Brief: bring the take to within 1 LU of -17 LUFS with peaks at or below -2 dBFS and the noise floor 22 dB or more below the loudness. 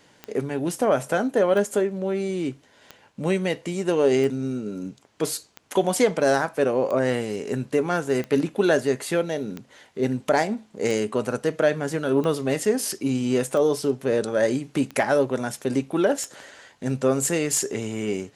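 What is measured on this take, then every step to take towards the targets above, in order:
clicks 14; loudness -24.0 LUFS; peak -7.5 dBFS; loudness target -17.0 LUFS
-> de-click; gain +7 dB; limiter -2 dBFS

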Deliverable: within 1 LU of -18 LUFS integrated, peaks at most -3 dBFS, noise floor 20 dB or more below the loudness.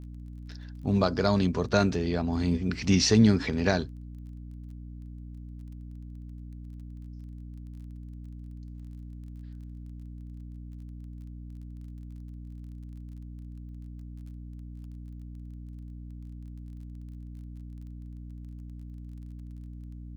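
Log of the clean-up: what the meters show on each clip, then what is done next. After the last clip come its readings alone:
ticks 24/s; hum 60 Hz; harmonics up to 300 Hz; hum level -39 dBFS; loudness -25.5 LUFS; peak -8.0 dBFS; loudness target -18.0 LUFS
-> de-click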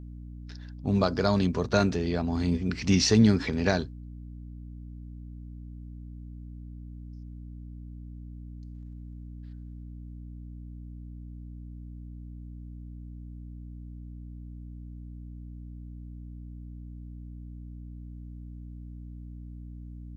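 ticks 0/s; hum 60 Hz; harmonics up to 300 Hz; hum level -39 dBFS
-> notches 60/120/180/240/300 Hz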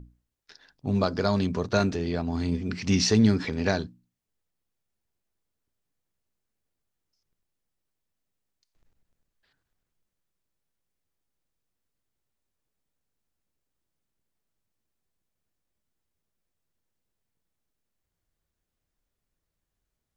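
hum none; loudness -25.5 LUFS; peak -8.0 dBFS; loudness target -18.0 LUFS
-> gain +7.5 dB; limiter -3 dBFS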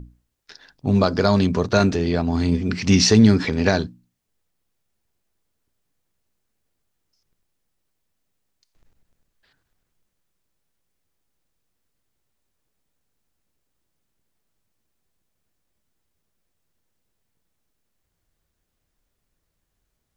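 loudness -18.5 LUFS; peak -3.0 dBFS; noise floor -76 dBFS

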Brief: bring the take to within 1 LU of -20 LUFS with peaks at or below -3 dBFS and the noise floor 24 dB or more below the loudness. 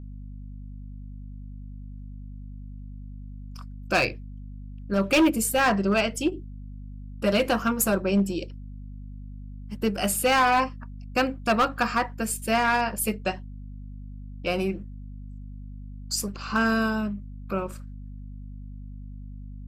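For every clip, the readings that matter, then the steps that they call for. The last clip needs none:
clipped 0.8%; flat tops at -15.5 dBFS; hum 50 Hz; harmonics up to 250 Hz; hum level -37 dBFS; loudness -25.0 LUFS; peak -15.5 dBFS; loudness target -20.0 LUFS
-> clip repair -15.5 dBFS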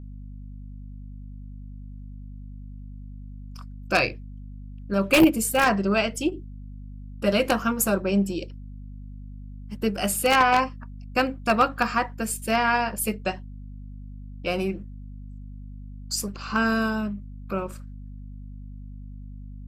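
clipped 0.0%; hum 50 Hz; harmonics up to 250 Hz; hum level -37 dBFS
-> de-hum 50 Hz, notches 5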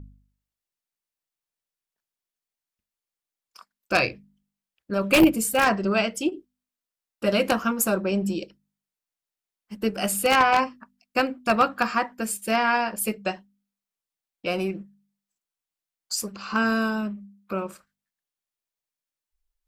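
hum none; loudness -24.0 LUFS; peak -6.0 dBFS; loudness target -20.0 LUFS
-> gain +4 dB; limiter -3 dBFS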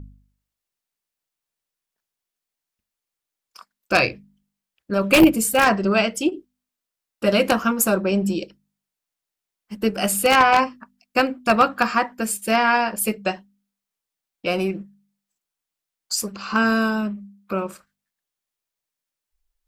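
loudness -20.5 LUFS; peak -3.0 dBFS; noise floor -86 dBFS

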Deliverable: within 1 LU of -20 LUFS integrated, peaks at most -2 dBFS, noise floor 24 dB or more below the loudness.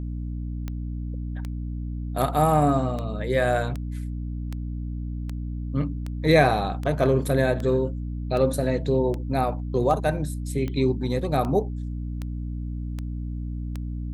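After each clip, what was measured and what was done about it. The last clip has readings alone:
clicks 18; hum 60 Hz; harmonics up to 300 Hz; hum level -28 dBFS; loudness -26.0 LUFS; peak -5.5 dBFS; loudness target -20.0 LUFS
-> de-click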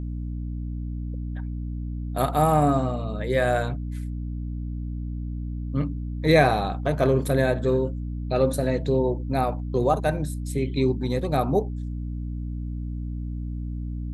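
clicks 0; hum 60 Hz; harmonics up to 300 Hz; hum level -28 dBFS
-> notches 60/120/180/240/300 Hz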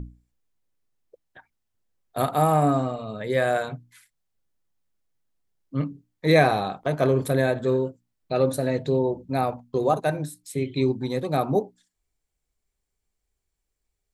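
hum none; loudness -24.5 LUFS; peak -5.0 dBFS; loudness target -20.0 LUFS
-> gain +4.5 dB; limiter -2 dBFS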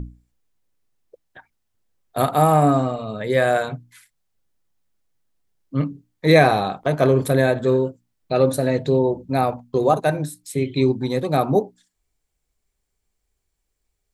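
loudness -20.0 LUFS; peak -2.0 dBFS; noise floor -76 dBFS

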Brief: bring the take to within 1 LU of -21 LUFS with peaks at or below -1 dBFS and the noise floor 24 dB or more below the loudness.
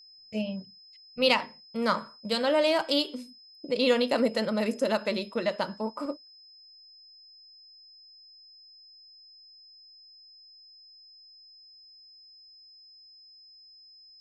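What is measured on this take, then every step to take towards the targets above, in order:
steady tone 5100 Hz; tone level -51 dBFS; loudness -28.0 LUFS; peak -9.0 dBFS; loudness target -21.0 LUFS
-> notch 5100 Hz, Q 30; gain +7 dB

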